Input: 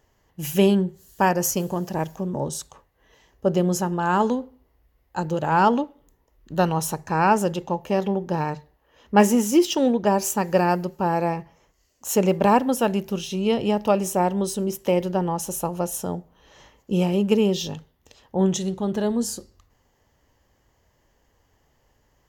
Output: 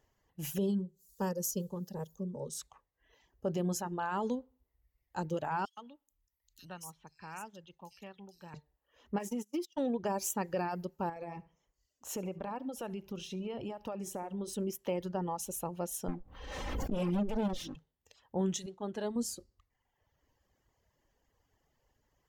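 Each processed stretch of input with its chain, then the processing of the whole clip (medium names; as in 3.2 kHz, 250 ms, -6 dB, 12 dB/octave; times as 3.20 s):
0.58–2.57 s: high-order bell 1.2 kHz -9 dB 1.2 oct + static phaser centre 460 Hz, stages 8
5.65–8.54 s: amplifier tone stack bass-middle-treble 5-5-5 + bands offset in time highs, lows 120 ms, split 3.8 kHz + three bands compressed up and down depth 40%
9.18–9.78 s: gate -22 dBFS, range -28 dB + compression 8:1, threshold -22 dBFS
11.09–14.53 s: treble shelf 4.8 kHz -7 dB + compression 8:1, threshold -25 dBFS + feedback delay 70 ms, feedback 28%, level -11.5 dB
16.08–17.76 s: comb filter that takes the minimum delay 3.8 ms + tilt EQ -2 dB/octave + swell ahead of each attack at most 30 dB/s
18.66–19.16 s: low-pass 9.2 kHz + expander -33 dBFS + peaking EQ 85 Hz -8 dB 3 oct
whole clip: peak limiter -14.5 dBFS; reverb removal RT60 1 s; trim -9 dB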